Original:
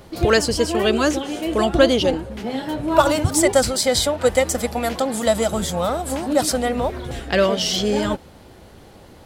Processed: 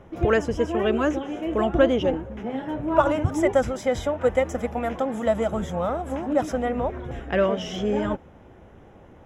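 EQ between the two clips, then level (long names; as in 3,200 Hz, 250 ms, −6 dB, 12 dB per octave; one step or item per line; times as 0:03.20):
moving average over 10 samples
−3.5 dB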